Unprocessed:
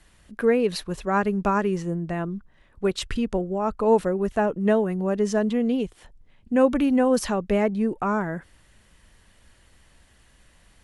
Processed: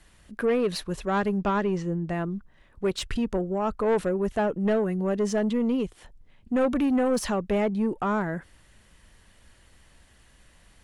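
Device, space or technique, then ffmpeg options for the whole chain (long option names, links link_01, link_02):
saturation between pre-emphasis and de-emphasis: -filter_complex "[0:a]highshelf=frequency=4100:gain=10,asoftclip=type=tanh:threshold=-18dB,highshelf=frequency=4100:gain=-10,asettb=1/sr,asplit=3[link_01][link_02][link_03];[link_01]atrim=end=1.384[link_04];[link_02]atrim=start=1.38:end=2.09,asetpts=PTS-STARTPTS,afade=type=in:duration=0.004:curve=qsin,afade=type=out:start_time=0.706:duration=0.004:curve=qsin,lowpass=6100[link_05];[link_03]atrim=start=2.086[link_06];[link_04][link_05]acrossfade=duration=0.004:curve1=hsin:curve2=qsin[link_07];[link_07][link_06]acrossfade=duration=0.004:curve1=qsin:curve2=hsin"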